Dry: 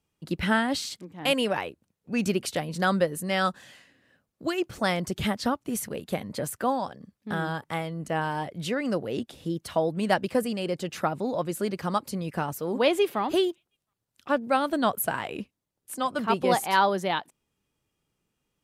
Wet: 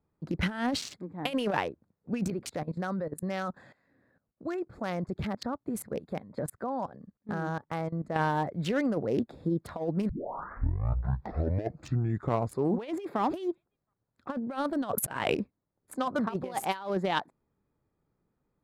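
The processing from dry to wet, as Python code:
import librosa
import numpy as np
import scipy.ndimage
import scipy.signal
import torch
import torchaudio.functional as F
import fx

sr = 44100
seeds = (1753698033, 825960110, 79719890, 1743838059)

y = fx.level_steps(x, sr, step_db=17, at=(2.3, 8.16))
y = fx.edit(y, sr, fx.tape_start(start_s=10.09, length_s=2.94),
    fx.clip_gain(start_s=14.92, length_s=0.43, db=8.5), tone=tone)
y = fx.wiener(y, sr, points=15)
y = fx.high_shelf(y, sr, hz=4600.0, db=-3.5)
y = fx.over_compress(y, sr, threshold_db=-28.0, ratio=-0.5)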